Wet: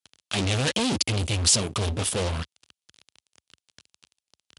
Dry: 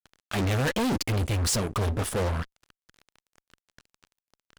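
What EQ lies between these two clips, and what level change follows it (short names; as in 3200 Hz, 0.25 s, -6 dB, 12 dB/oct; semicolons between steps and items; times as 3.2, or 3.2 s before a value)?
HPF 67 Hz 24 dB/oct; brick-wall FIR low-pass 11000 Hz; resonant high shelf 2300 Hz +7 dB, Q 1.5; 0.0 dB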